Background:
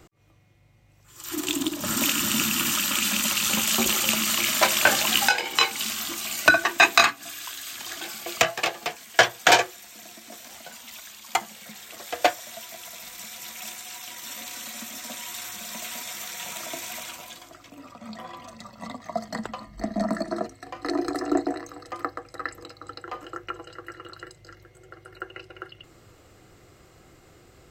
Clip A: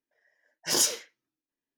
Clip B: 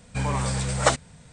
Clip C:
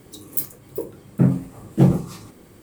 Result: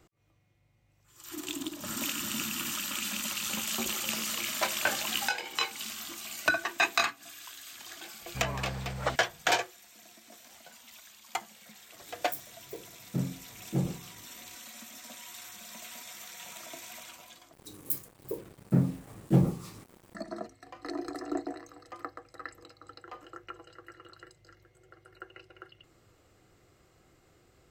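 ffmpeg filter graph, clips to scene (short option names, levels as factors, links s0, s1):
-filter_complex "[3:a]asplit=2[s0][s1];[0:a]volume=0.316[s2];[1:a]acompressor=threshold=0.0447:ratio=5:attack=2.7:release=227:knee=1:detection=rms[s3];[2:a]lowpass=3900[s4];[s1]acrusher=bits=6:mix=0:aa=0.5[s5];[s2]asplit=2[s6][s7];[s6]atrim=end=17.534[s8];[s5]atrim=end=2.62,asetpts=PTS-STARTPTS,volume=0.398[s9];[s7]atrim=start=20.146[s10];[s3]atrim=end=1.77,asetpts=PTS-STARTPTS,volume=0.299,afade=t=in:d=0.004:c=hsin,afade=t=out:st=1.766:d=0.004:c=hsin,adelay=3440[s11];[s4]atrim=end=1.32,asetpts=PTS-STARTPTS,volume=0.299,afade=t=in:d=0.004:c=hsin,afade=t=out:st=1.316:d=0.004:c=hsin,adelay=8200[s12];[s0]atrim=end=2.62,asetpts=PTS-STARTPTS,volume=0.178,afade=t=in:d=0.004:c=hsin,afade=t=out:st=2.616:d=0.004:c=hsin,adelay=11950[s13];[s8][s9]acrossfade=d=0.004:c1=hsin:c2=hsin[s14];[s14][s10]acrossfade=d=0.004:c1=hsin:c2=hsin[s15];[s15][s11][s12][s13]amix=inputs=4:normalize=0"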